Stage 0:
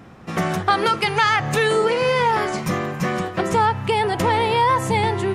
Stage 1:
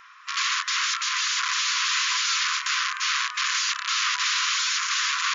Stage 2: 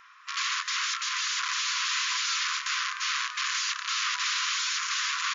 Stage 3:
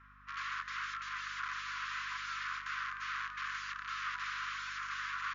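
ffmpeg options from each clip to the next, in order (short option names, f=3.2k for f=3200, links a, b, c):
-af "aeval=exprs='(mod(11.2*val(0)+1,2)-1)/11.2':c=same,afftfilt=real='re*between(b*sr/4096,990,7200)':imag='im*between(b*sr/4096,990,7200)':win_size=4096:overlap=0.75,volume=3.5dB"
-af "aecho=1:1:213:0.15,volume=-4.5dB"
-af "bandpass=f=1.4k:t=q:w=2.1:csg=0,aeval=exprs='val(0)+0.00126*(sin(2*PI*50*n/s)+sin(2*PI*2*50*n/s)/2+sin(2*PI*3*50*n/s)/3+sin(2*PI*4*50*n/s)/4+sin(2*PI*5*50*n/s)/5)':c=same,volume=-4.5dB"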